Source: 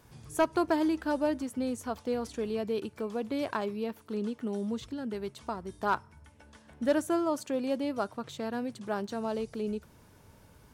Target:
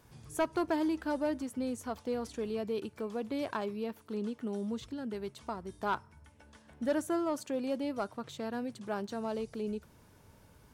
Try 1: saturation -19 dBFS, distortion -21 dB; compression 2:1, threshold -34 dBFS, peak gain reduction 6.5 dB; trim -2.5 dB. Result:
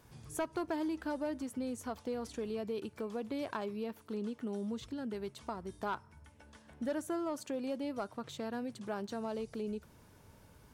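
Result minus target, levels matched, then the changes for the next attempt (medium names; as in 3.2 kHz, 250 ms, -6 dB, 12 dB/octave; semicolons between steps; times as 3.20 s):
compression: peak gain reduction +6.5 dB
remove: compression 2:1, threshold -34 dBFS, peak gain reduction 6.5 dB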